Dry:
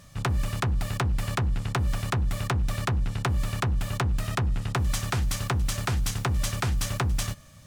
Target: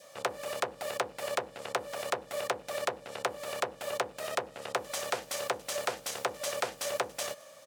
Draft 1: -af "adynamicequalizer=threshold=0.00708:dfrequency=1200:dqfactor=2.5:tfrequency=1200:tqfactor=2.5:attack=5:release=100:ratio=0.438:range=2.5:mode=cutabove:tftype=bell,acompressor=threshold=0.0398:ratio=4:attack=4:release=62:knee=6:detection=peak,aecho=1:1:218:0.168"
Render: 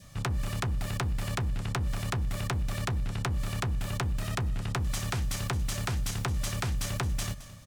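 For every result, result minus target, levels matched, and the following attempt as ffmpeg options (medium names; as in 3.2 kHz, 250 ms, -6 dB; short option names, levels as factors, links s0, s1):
500 Hz band -11.0 dB; echo-to-direct +12 dB
-af "adynamicequalizer=threshold=0.00708:dfrequency=1200:dqfactor=2.5:tfrequency=1200:tqfactor=2.5:attack=5:release=100:ratio=0.438:range=2.5:mode=cutabove:tftype=bell,acompressor=threshold=0.0398:ratio=4:attack=4:release=62:knee=6:detection=peak,highpass=f=530:t=q:w=4.3,aecho=1:1:218:0.168"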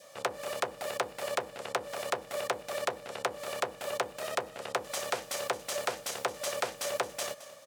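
echo-to-direct +12 dB
-af "adynamicequalizer=threshold=0.00708:dfrequency=1200:dqfactor=2.5:tfrequency=1200:tqfactor=2.5:attack=5:release=100:ratio=0.438:range=2.5:mode=cutabove:tftype=bell,acompressor=threshold=0.0398:ratio=4:attack=4:release=62:knee=6:detection=peak,highpass=f=530:t=q:w=4.3,aecho=1:1:218:0.0422"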